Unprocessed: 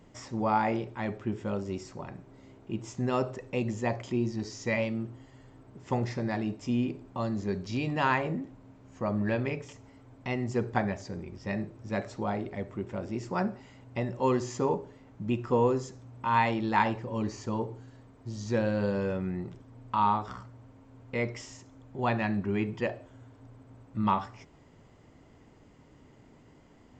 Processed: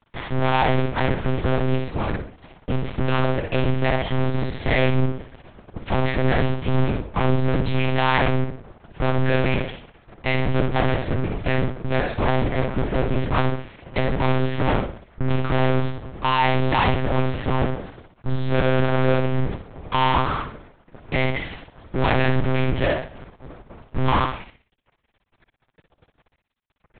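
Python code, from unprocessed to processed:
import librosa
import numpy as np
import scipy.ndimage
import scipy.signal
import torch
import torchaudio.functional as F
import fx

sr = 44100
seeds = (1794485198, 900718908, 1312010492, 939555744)

y = fx.peak_eq(x, sr, hz=600.0, db=-2.0, octaves=2.1)
y = fx.fuzz(y, sr, gain_db=40.0, gate_db=-49.0)
y = fx.echo_feedback(y, sr, ms=62, feedback_pct=36, wet_db=-6.5)
y = fx.lpc_monotone(y, sr, seeds[0], pitch_hz=130.0, order=8)
y = y * librosa.db_to_amplitude(-4.5)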